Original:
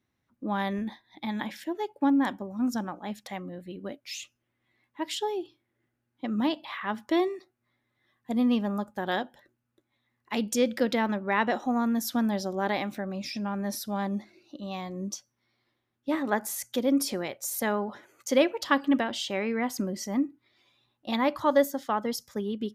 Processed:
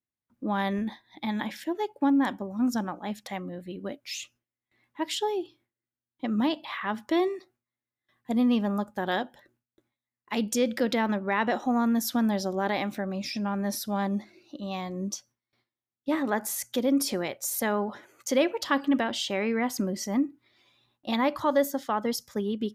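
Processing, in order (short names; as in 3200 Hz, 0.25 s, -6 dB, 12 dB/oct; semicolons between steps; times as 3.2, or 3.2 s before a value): in parallel at +2 dB: limiter -21 dBFS, peak gain reduction 11 dB; on the sum: gate with hold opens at -55 dBFS; gain -5 dB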